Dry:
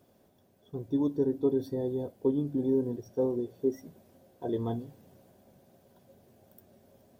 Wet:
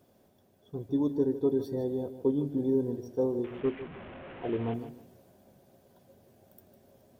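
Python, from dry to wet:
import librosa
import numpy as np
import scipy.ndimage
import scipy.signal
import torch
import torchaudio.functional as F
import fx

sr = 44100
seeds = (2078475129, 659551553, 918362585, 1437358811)

y = fx.delta_mod(x, sr, bps=16000, step_db=-39.5, at=(3.44, 4.74))
y = fx.echo_feedback(y, sr, ms=153, feedback_pct=23, wet_db=-12.0)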